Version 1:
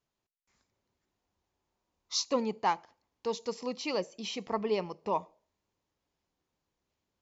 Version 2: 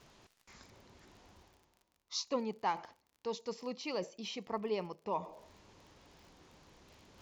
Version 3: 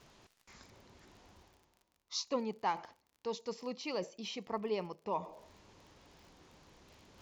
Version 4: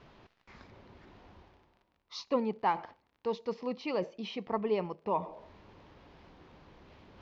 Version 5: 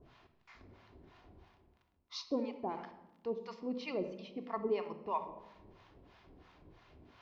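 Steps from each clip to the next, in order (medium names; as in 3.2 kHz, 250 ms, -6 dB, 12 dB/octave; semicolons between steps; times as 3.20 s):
low-pass 6.6 kHz 12 dB/octave; reverse; upward compressor, threshold -32 dBFS; reverse; crackle 43 per s -46 dBFS; trim -5.5 dB
no audible change
distance through air 270 m; trim +6 dB
harmonic tremolo 3 Hz, depth 100%, crossover 670 Hz; on a send at -7 dB: reverberation RT60 1.0 s, pre-delay 3 ms; on the sum: trim -1 dB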